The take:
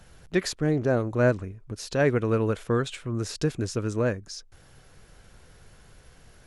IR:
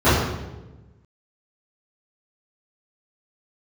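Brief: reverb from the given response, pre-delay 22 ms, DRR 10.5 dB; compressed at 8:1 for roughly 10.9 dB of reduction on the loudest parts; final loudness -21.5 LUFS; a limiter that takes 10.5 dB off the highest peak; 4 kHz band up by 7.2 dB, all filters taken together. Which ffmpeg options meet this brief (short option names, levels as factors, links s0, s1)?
-filter_complex "[0:a]equalizer=f=4000:t=o:g=9,acompressor=threshold=0.0398:ratio=8,alimiter=level_in=1.33:limit=0.0631:level=0:latency=1,volume=0.75,asplit=2[s0][s1];[1:a]atrim=start_sample=2205,adelay=22[s2];[s1][s2]afir=irnorm=-1:irlink=0,volume=0.0168[s3];[s0][s3]amix=inputs=2:normalize=0,volume=4.73"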